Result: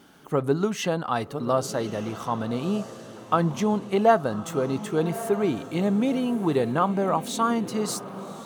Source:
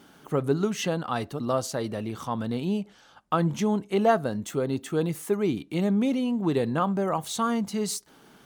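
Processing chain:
on a send: feedback delay with all-pass diffusion 1,188 ms, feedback 42%, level −12.5 dB
on the sum: dynamic equaliser 890 Hz, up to +4 dB, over −39 dBFS, Q 0.7

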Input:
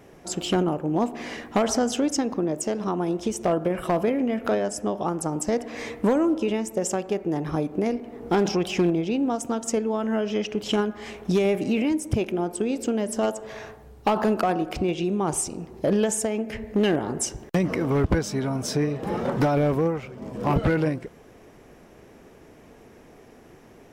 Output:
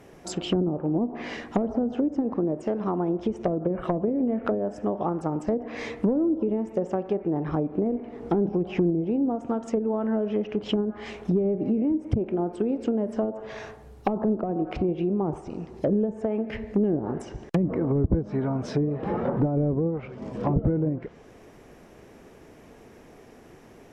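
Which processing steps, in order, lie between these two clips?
treble cut that deepens with the level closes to 410 Hz, closed at −19 dBFS

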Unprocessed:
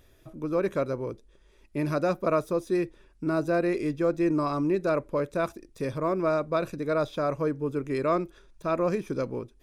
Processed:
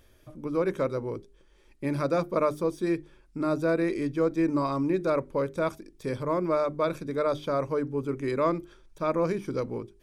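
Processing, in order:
wrong playback speed 25 fps video run at 24 fps
mains-hum notches 50/100/150/200/250/300/350/400 Hz

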